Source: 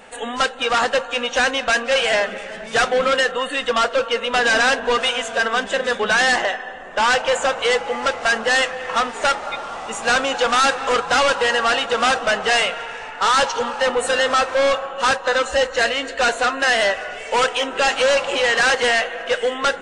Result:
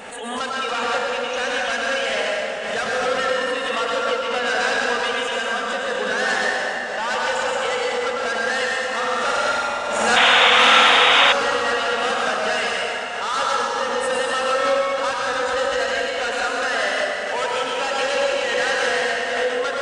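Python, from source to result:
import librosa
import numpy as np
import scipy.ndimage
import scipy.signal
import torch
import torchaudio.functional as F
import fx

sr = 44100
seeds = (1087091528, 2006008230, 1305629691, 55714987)

y = fx.highpass(x, sr, hz=70.0, slope=6)
y = fx.room_flutter(y, sr, wall_m=8.5, rt60_s=1.1, at=(8.91, 11.08), fade=0.02)
y = fx.rev_plate(y, sr, seeds[0], rt60_s=3.1, hf_ratio=0.7, predelay_ms=85, drr_db=-4.0)
y = fx.spec_paint(y, sr, seeds[1], shape='noise', start_s=10.16, length_s=1.17, low_hz=640.0, high_hz=3800.0, level_db=-6.0)
y = fx.pre_swell(y, sr, db_per_s=34.0)
y = y * 10.0 ** (-9.0 / 20.0)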